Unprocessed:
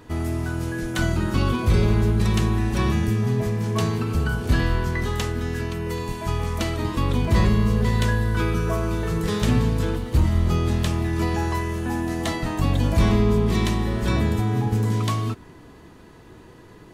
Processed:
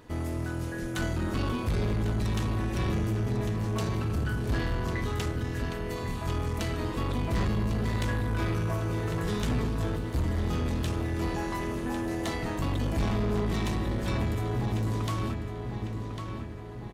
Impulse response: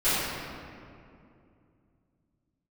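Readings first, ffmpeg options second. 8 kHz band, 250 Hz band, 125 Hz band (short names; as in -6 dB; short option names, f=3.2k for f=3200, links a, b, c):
-7.0 dB, -7.0 dB, -7.5 dB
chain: -filter_complex "[0:a]tremolo=f=210:d=0.667,asplit=2[a][b];[b]adelay=1100,lowpass=f=4.6k:p=1,volume=-8dB,asplit=2[c][d];[d]adelay=1100,lowpass=f=4.6k:p=1,volume=0.52,asplit=2[e][f];[f]adelay=1100,lowpass=f=4.6k:p=1,volume=0.52,asplit=2[g][h];[h]adelay=1100,lowpass=f=4.6k:p=1,volume=0.52,asplit=2[i][j];[j]adelay=1100,lowpass=f=4.6k:p=1,volume=0.52,asplit=2[k][l];[l]adelay=1100,lowpass=f=4.6k:p=1,volume=0.52[m];[a][c][e][g][i][k][m]amix=inputs=7:normalize=0,aeval=exprs='0.316*(cos(1*acos(clip(val(0)/0.316,-1,1)))-cos(1*PI/2))+0.0631*(cos(5*acos(clip(val(0)/0.316,-1,1)))-cos(5*PI/2))':c=same,volume=-8.5dB"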